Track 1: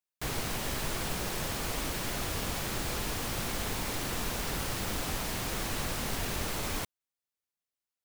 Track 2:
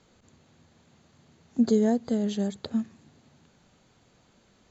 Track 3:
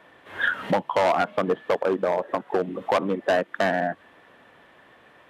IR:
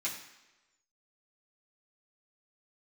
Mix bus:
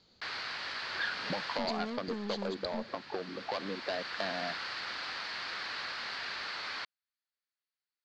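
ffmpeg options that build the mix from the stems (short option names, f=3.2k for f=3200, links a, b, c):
-filter_complex "[0:a]bandpass=f=1.6k:t=q:w=1.9:csg=0,volume=2dB[a];[1:a]aeval=exprs='(tanh(35.5*val(0)+0.5)-tanh(0.5))/35.5':c=same,volume=-5.5dB,asplit=2[b][c];[2:a]acompressor=threshold=-27dB:ratio=3,adelay=600,volume=-8.5dB[d];[c]apad=whole_len=354934[e];[a][e]sidechaincompress=threshold=-55dB:ratio=3:attack=16:release=1190[f];[f][b][d]amix=inputs=3:normalize=0,lowpass=f=4.5k:t=q:w=6.4"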